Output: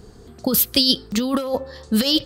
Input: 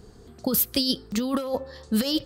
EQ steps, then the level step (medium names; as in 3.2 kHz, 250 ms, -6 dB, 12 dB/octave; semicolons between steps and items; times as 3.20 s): dynamic bell 3.5 kHz, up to +6 dB, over -38 dBFS, Q 1.1; +4.5 dB